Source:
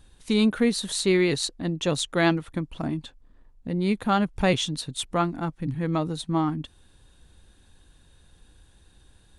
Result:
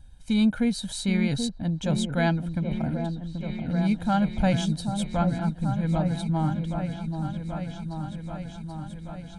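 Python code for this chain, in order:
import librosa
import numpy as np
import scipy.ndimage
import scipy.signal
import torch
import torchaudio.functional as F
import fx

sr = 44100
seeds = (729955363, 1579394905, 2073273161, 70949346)

y = fx.low_shelf(x, sr, hz=400.0, db=9.0)
y = y + 0.83 * np.pad(y, (int(1.3 * sr / 1000.0), 0))[:len(y)]
y = fx.echo_opening(y, sr, ms=782, hz=750, octaves=1, feedback_pct=70, wet_db=-6)
y = F.gain(torch.from_numpy(y), -8.0).numpy()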